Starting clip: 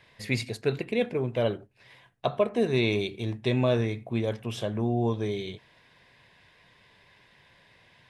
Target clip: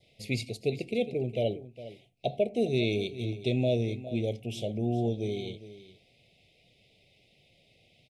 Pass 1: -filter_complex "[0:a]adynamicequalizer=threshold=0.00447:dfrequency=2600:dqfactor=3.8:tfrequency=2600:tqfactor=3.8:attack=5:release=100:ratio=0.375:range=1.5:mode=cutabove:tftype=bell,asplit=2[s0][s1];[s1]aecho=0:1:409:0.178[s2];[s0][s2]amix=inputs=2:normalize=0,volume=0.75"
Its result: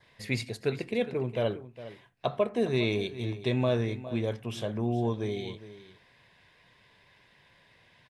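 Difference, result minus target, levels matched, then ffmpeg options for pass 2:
1 kHz band +3.5 dB
-filter_complex "[0:a]adynamicequalizer=threshold=0.00447:dfrequency=2600:dqfactor=3.8:tfrequency=2600:tqfactor=3.8:attack=5:release=100:ratio=0.375:range=1.5:mode=cutabove:tftype=bell,asuperstop=centerf=1300:order=12:qfactor=0.88,asplit=2[s0][s1];[s1]aecho=0:1:409:0.178[s2];[s0][s2]amix=inputs=2:normalize=0,volume=0.75"

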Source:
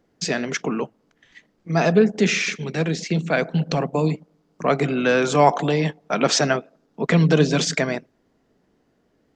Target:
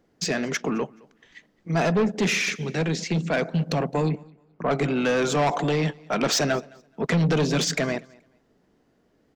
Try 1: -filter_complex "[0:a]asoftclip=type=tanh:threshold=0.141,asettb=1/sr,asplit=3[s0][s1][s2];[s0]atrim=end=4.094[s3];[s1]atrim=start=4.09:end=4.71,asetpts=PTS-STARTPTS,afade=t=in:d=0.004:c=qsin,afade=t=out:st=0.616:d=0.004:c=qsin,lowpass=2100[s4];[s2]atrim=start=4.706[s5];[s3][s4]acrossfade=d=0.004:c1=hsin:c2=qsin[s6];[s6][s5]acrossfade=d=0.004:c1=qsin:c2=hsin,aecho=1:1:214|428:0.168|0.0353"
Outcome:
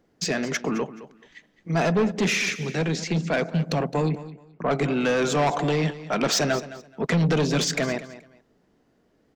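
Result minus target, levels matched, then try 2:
echo-to-direct +10 dB
-filter_complex "[0:a]asoftclip=type=tanh:threshold=0.141,asettb=1/sr,asplit=3[s0][s1][s2];[s0]atrim=end=4.094[s3];[s1]atrim=start=4.09:end=4.71,asetpts=PTS-STARTPTS,afade=t=in:d=0.004:c=qsin,afade=t=out:st=0.616:d=0.004:c=qsin,lowpass=2100[s4];[s2]atrim=start=4.706[s5];[s3][s4]acrossfade=d=0.004:c1=hsin:c2=qsin[s6];[s6][s5]acrossfade=d=0.004:c1=qsin:c2=hsin,aecho=1:1:214|428:0.0531|0.0111"

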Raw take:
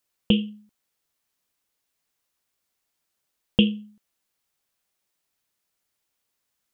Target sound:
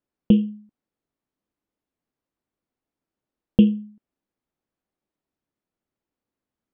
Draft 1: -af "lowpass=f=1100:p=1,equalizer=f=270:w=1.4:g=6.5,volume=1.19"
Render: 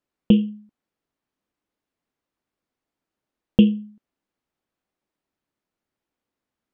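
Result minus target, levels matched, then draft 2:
1 kHz band +2.5 dB
-af "lowpass=f=540:p=1,equalizer=f=270:w=1.4:g=6.5,volume=1.19"

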